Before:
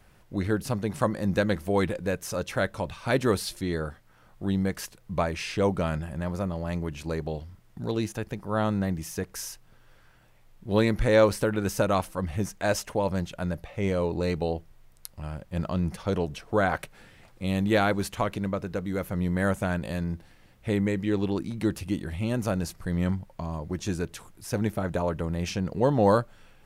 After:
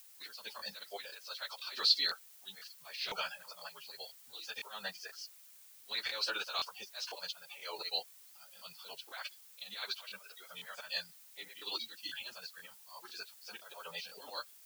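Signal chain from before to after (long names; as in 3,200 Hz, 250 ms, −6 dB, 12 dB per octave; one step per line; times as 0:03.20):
noise reduction from a noise print of the clip's start 19 dB
noise gate with hold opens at −48 dBFS
high-pass filter 1,100 Hz 12 dB per octave
high-shelf EQ 2,500 Hz +8.5 dB
downward compressor 4 to 1, threshold −32 dBFS, peak gain reduction 10 dB
volume swells 347 ms
transistor ladder low-pass 4,600 Hz, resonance 75%
background noise blue −70 dBFS
time stretch by phase vocoder 0.55×
regular buffer underruns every 0.50 s, samples 1,024, repeat, from 0:00.57
level +15 dB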